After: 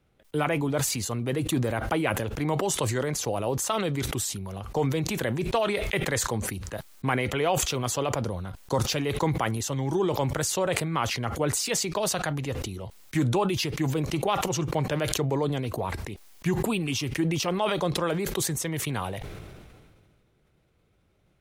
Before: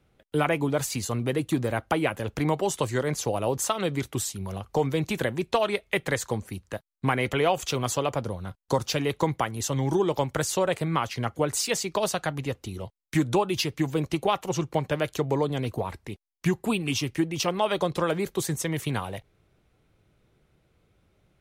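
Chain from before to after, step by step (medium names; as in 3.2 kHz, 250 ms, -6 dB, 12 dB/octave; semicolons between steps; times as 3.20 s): decay stretcher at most 29 dB/s; trim -2.5 dB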